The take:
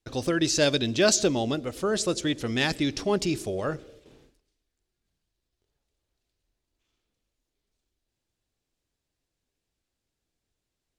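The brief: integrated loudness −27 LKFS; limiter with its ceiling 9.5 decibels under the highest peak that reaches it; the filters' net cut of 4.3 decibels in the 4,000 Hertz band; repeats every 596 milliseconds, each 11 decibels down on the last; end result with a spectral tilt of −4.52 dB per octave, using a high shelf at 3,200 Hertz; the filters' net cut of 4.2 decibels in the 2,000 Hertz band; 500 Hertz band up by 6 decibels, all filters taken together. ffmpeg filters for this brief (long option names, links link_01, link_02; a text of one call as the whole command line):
ffmpeg -i in.wav -af "equalizer=frequency=500:width_type=o:gain=8,equalizer=frequency=2000:width_type=o:gain=-6,highshelf=frequency=3200:gain=4.5,equalizer=frequency=4000:width_type=o:gain=-7.5,alimiter=limit=-16dB:level=0:latency=1,aecho=1:1:596|1192|1788:0.282|0.0789|0.0221,volume=-1dB" out.wav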